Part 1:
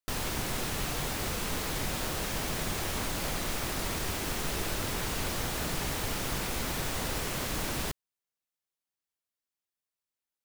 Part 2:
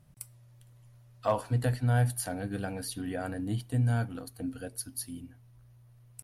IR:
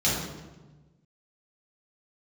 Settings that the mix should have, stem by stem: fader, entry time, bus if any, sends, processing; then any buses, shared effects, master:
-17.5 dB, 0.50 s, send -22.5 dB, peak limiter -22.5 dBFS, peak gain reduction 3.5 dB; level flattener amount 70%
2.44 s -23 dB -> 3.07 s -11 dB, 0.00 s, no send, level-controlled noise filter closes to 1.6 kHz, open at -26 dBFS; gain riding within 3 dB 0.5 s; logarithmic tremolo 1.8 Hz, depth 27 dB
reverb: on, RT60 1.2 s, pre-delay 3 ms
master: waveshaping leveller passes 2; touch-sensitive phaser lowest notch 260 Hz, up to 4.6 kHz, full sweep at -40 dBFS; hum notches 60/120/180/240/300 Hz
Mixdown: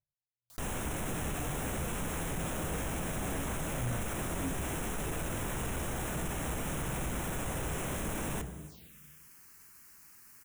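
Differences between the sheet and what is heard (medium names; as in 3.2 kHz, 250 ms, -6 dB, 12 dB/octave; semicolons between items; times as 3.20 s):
stem 1 -17.5 dB -> -10.0 dB; master: missing hum notches 60/120/180/240/300 Hz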